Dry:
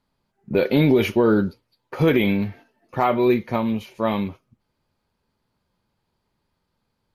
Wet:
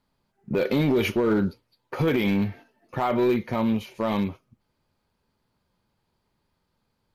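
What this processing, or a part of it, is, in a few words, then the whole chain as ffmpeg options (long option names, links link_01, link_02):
limiter into clipper: -af "alimiter=limit=-13dB:level=0:latency=1:release=54,asoftclip=type=hard:threshold=-16.5dB"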